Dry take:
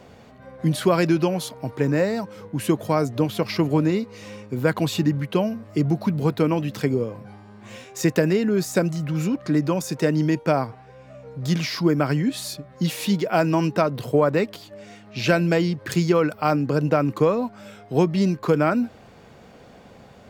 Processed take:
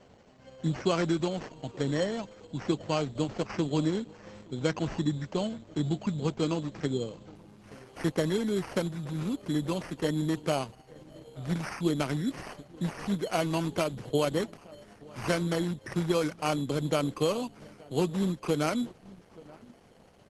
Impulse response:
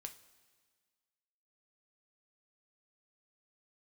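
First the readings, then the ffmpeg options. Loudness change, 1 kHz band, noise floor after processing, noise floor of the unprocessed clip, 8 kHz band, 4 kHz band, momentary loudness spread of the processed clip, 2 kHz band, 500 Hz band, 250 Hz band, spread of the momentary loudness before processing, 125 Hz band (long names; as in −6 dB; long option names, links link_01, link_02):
−8.5 dB, −9.0 dB, −57 dBFS, −48 dBFS, −7.0 dB, −5.0 dB, 13 LU, −9.0 dB, −8.5 dB, −8.5 dB, 11 LU, −9.0 dB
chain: -filter_complex "[0:a]acrusher=samples=12:mix=1:aa=0.000001,asplit=2[link_01][link_02];[link_02]adelay=874.6,volume=-21dB,highshelf=frequency=4000:gain=-19.7[link_03];[link_01][link_03]amix=inputs=2:normalize=0,volume=-8dB" -ar 48000 -c:a libopus -b:a 12k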